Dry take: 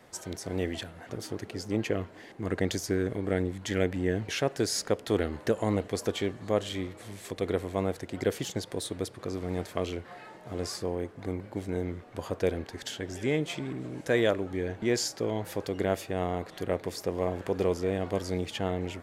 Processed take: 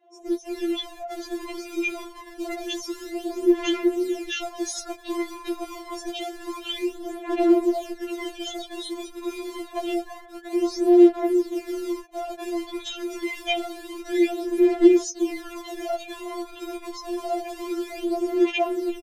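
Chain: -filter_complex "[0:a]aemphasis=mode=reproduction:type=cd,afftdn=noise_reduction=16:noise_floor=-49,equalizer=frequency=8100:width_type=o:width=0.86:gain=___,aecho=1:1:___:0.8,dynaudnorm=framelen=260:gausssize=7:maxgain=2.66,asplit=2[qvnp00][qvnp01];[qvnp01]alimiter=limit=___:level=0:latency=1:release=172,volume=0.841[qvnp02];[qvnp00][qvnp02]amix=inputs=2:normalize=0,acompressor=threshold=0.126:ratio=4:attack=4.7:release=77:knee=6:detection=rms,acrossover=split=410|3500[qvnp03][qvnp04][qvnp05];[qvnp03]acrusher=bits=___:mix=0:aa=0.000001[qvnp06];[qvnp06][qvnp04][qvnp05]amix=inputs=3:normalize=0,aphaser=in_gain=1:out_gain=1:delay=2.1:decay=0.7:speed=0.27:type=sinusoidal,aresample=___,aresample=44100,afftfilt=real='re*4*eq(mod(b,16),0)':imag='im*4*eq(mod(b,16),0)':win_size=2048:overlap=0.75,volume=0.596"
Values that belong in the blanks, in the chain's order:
-4.5, 5.5, 0.188, 5, 32000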